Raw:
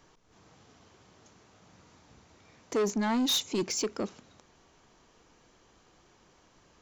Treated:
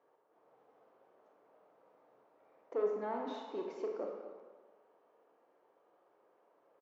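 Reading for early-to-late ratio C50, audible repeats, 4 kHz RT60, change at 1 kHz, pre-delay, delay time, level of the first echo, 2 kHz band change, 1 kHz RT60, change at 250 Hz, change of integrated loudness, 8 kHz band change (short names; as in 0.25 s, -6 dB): 2.0 dB, 1, 0.95 s, -6.0 dB, 28 ms, 0.237 s, -14.0 dB, -14.5 dB, 1.4 s, -15.5 dB, -10.0 dB, under -35 dB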